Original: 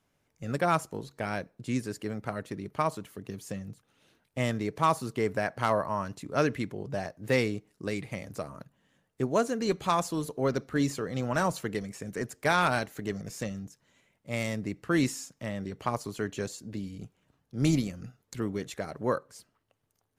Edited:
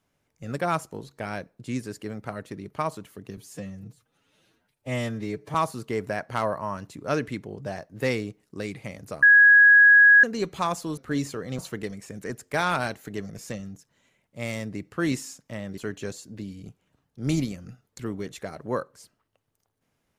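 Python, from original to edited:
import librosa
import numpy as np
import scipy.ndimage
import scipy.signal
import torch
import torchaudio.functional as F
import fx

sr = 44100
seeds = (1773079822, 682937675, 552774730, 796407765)

y = fx.edit(x, sr, fx.stretch_span(start_s=3.37, length_s=1.45, factor=1.5),
    fx.bleep(start_s=8.5, length_s=1.01, hz=1660.0, db=-10.5),
    fx.cut(start_s=10.25, length_s=0.37),
    fx.cut(start_s=11.23, length_s=0.27),
    fx.cut(start_s=15.69, length_s=0.44), tone=tone)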